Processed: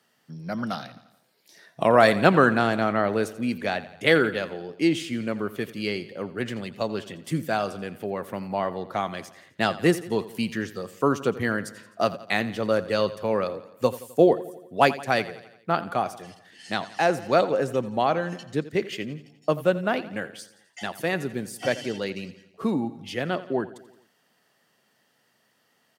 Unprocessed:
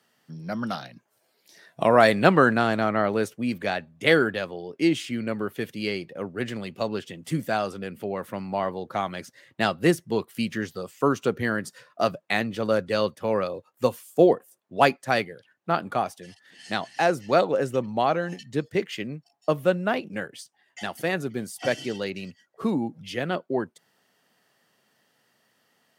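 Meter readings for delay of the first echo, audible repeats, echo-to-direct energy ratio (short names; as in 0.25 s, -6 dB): 86 ms, 4, -15.0 dB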